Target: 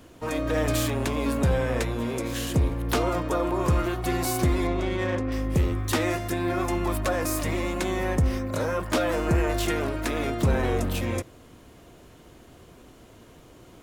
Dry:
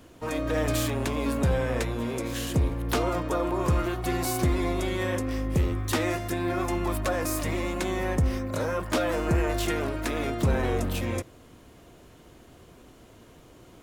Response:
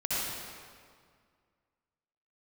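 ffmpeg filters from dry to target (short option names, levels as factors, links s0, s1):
-filter_complex "[0:a]asettb=1/sr,asplit=3[s0][s1][s2];[s0]atrim=end=4.674[s3];[s1]atrim=start=4.67:end=5.32,asetpts=PTS-STARTPTS,afade=t=in:d=0.004:c=qsin,afade=t=out:st=0.646:d=0.004:c=qsin,adynamicsmooth=sensitivity=4.5:basefreq=2600[s4];[s2]atrim=start=5.316[s5];[s3][s4]acrossfade=d=0.004:c1=hsin:c2=qsin[s6];[s6][s5]acrossfade=d=0.004:c1=qsin:c2=hsin,volume=1.19"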